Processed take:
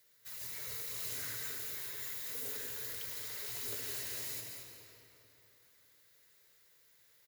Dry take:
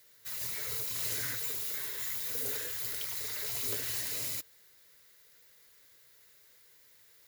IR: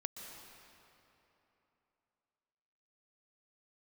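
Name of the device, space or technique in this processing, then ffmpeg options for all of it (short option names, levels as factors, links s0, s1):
cave: -filter_complex "[0:a]aecho=1:1:223:0.355[s0];[1:a]atrim=start_sample=2205[s1];[s0][s1]afir=irnorm=-1:irlink=0,volume=0.631"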